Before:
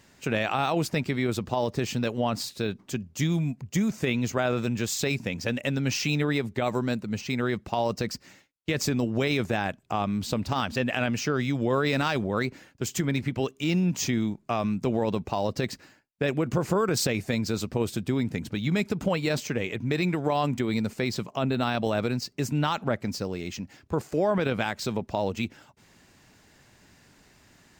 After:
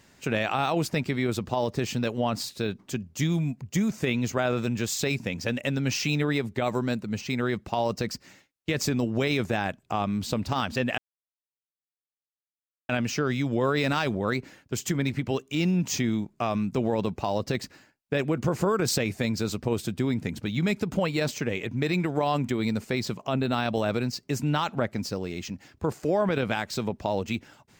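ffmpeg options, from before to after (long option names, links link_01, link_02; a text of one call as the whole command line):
ffmpeg -i in.wav -filter_complex "[0:a]asplit=2[link_01][link_02];[link_01]atrim=end=10.98,asetpts=PTS-STARTPTS,afade=type=out:start_time=10.976:duration=0.004:curve=hsin,apad=pad_dur=1.91[link_03];[link_02]atrim=start=10.98,asetpts=PTS-STARTPTS,afade=type=in:duration=0.004:curve=hsin[link_04];[link_03][link_04]concat=n=2:v=0:a=1" out.wav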